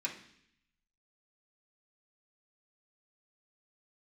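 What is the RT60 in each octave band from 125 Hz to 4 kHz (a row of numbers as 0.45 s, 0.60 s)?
1.0 s, 0.90 s, 0.70 s, 0.65 s, 0.85 s, 0.85 s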